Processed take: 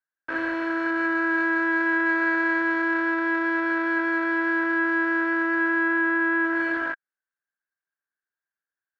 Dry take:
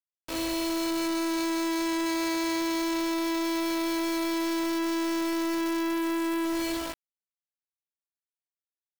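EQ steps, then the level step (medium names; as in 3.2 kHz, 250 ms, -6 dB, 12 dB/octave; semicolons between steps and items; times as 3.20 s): high-pass 200 Hz 6 dB/octave; resonant low-pass 1.6 kHz, resonance Q 15; peaking EQ 320 Hz +2.5 dB; 0.0 dB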